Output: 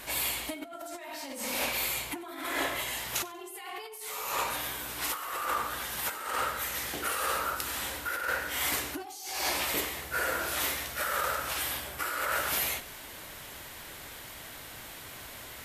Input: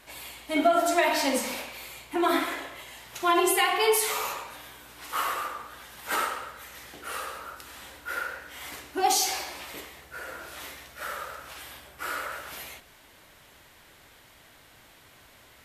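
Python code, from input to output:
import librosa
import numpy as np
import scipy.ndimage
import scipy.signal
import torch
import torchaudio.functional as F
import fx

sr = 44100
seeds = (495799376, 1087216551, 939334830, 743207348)

y = fx.high_shelf(x, sr, hz=8800.0, db=8.0)
y = fx.over_compress(y, sr, threshold_db=-37.0, ratio=-1.0)
y = fx.echo_warbled(y, sr, ms=93, feedback_pct=31, rate_hz=2.8, cents=60, wet_db=-20.0)
y = y * librosa.db_to_amplitude(2.0)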